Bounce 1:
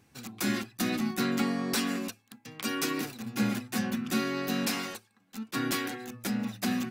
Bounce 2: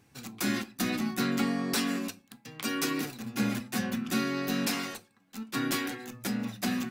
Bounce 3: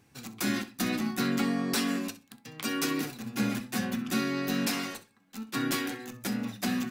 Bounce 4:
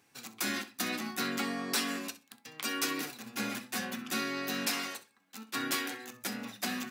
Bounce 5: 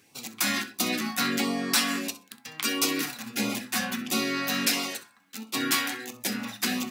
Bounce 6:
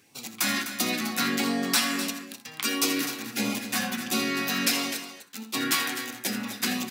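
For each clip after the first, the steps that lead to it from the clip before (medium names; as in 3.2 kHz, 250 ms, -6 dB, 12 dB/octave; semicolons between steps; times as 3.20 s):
simulated room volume 120 m³, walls furnished, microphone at 0.33 m
flutter echo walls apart 11 m, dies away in 0.24 s
high-pass 610 Hz 6 dB/octave
de-hum 64.36 Hz, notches 30; LFO notch sine 1.5 Hz 360–1700 Hz; trim +8 dB
loudspeakers at several distances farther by 28 m -12 dB, 87 m -11 dB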